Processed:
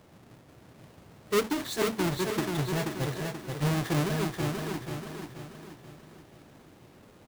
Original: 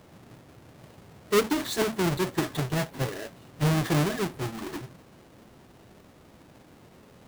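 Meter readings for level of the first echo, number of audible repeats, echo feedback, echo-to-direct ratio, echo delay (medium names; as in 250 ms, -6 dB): -4.5 dB, 5, 45%, -3.5 dB, 482 ms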